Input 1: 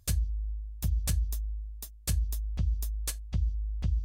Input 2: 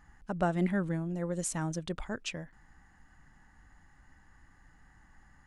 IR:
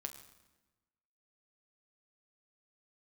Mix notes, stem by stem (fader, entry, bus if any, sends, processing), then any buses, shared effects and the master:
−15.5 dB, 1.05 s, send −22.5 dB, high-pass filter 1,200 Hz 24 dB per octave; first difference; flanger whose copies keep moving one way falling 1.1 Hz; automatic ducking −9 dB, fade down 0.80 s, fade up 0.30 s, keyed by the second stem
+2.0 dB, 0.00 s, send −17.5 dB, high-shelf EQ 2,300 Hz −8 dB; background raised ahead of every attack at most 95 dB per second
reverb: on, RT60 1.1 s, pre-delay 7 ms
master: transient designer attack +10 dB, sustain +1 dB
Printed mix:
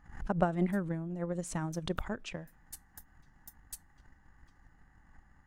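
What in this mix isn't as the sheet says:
stem 1: entry 1.05 s → 0.65 s
stem 2 +2.0 dB → −4.5 dB

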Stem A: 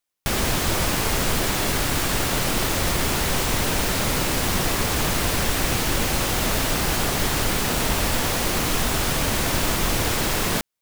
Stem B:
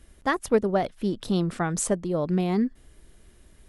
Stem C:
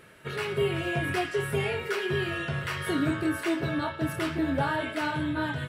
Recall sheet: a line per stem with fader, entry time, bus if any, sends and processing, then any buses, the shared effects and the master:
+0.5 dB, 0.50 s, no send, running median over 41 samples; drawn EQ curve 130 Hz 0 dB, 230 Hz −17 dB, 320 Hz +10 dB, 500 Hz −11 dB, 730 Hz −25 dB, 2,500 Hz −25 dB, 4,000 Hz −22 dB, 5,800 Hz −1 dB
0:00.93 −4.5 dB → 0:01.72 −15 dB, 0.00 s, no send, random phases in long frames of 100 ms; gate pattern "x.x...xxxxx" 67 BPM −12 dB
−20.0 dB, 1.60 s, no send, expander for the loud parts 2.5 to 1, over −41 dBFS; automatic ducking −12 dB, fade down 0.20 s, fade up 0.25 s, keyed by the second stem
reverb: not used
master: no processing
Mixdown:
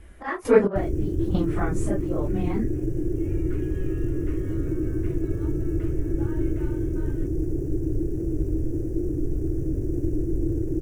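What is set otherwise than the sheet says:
stem B −4.5 dB → +6.0 dB
stem C: missing expander for the loud parts 2.5 to 1, over −41 dBFS
master: extra high shelf with overshoot 3,000 Hz −8 dB, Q 1.5

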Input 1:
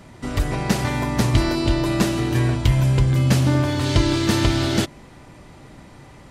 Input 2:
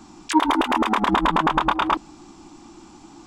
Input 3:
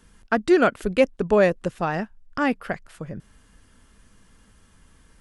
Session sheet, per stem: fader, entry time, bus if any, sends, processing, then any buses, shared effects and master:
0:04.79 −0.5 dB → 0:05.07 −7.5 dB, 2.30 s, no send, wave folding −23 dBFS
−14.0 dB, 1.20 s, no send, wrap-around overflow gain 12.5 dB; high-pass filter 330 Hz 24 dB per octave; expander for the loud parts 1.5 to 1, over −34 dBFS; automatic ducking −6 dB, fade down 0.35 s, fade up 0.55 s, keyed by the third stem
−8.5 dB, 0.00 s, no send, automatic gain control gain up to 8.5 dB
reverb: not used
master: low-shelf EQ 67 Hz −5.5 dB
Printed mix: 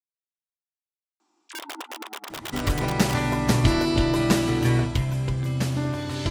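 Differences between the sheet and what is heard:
stem 1: missing wave folding −23 dBFS
stem 3: muted

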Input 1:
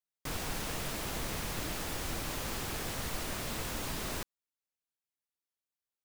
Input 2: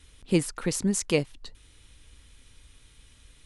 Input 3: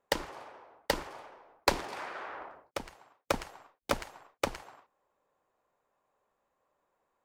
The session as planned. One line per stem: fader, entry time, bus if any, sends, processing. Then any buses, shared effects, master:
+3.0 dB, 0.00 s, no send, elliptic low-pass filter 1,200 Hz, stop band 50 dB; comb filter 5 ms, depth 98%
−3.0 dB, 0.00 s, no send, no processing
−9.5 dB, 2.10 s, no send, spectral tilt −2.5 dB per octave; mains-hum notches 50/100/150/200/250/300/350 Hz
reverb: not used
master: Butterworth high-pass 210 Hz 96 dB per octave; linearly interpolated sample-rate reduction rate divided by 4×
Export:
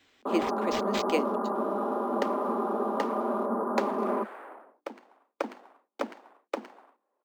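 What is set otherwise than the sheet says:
stem 1 +3.0 dB → +11.5 dB
stem 3 −9.5 dB → −2.5 dB

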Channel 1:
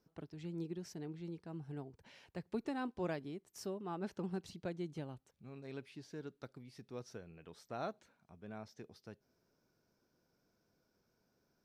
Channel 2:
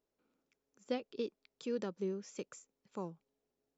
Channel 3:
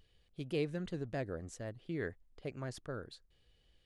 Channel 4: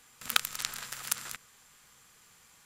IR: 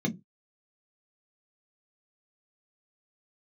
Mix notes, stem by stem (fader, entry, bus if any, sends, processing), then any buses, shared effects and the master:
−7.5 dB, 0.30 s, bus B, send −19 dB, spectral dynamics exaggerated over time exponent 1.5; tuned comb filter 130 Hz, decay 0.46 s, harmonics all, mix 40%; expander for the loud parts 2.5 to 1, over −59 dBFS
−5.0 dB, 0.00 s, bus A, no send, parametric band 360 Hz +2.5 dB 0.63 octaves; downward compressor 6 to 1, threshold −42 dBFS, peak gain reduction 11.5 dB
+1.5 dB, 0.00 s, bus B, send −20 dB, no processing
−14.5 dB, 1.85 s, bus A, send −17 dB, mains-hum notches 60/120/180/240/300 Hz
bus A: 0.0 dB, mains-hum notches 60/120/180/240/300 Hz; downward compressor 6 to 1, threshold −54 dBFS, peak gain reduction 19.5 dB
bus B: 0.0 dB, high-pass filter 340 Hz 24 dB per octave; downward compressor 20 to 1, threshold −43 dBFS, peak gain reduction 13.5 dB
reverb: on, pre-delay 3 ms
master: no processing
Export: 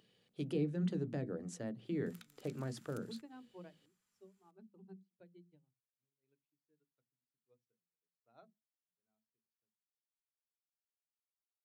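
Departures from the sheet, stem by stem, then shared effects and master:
stem 1: entry 0.30 s → 0.55 s
stem 2: muted
stem 4 −14.5 dB → −25.0 dB

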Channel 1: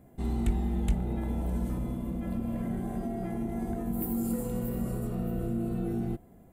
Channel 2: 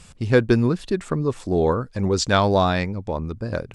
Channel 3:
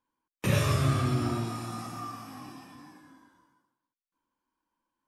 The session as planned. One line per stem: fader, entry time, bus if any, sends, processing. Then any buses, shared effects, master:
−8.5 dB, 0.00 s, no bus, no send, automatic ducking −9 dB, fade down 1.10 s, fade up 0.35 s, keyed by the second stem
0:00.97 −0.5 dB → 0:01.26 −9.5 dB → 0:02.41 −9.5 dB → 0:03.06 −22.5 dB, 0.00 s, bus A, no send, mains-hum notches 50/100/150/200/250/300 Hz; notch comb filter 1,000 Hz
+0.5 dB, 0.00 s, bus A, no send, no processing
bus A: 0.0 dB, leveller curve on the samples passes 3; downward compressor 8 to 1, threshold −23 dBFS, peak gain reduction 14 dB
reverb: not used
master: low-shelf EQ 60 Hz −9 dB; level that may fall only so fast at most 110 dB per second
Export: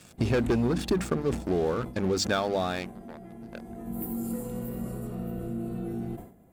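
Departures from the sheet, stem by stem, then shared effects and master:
stem 1 −8.5 dB → −1.5 dB
stem 3: muted

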